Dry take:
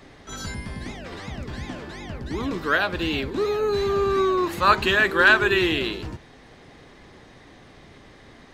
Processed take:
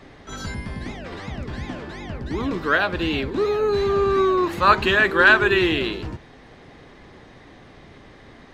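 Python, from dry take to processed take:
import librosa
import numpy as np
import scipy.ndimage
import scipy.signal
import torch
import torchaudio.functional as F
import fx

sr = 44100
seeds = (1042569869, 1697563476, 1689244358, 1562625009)

y = fx.high_shelf(x, sr, hz=5500.0, db=-9.0)
y = F.gain(torch.from_numpy(y), 2.5).numpy()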